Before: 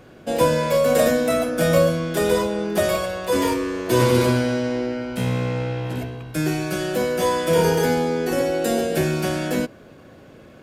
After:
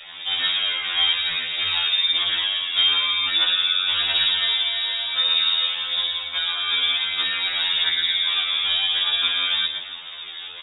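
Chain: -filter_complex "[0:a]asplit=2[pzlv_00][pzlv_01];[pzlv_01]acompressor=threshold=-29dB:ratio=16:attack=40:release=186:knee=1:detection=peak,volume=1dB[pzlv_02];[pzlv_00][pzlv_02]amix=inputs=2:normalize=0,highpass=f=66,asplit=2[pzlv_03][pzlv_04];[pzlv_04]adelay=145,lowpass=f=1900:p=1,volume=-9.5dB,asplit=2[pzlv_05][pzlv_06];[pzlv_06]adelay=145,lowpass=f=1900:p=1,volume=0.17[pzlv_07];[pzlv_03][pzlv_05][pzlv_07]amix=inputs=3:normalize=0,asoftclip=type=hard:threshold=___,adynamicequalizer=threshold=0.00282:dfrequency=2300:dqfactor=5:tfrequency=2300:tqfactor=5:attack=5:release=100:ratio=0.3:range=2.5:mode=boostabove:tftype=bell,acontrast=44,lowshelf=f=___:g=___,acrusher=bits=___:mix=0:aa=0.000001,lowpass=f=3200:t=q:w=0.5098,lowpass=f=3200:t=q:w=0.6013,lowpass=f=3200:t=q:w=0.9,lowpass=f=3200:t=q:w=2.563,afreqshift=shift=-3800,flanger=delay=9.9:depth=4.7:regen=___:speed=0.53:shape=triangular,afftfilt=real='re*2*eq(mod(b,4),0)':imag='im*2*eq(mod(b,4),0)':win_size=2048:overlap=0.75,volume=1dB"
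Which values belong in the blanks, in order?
-19dB, 97, 8.5, 4, 42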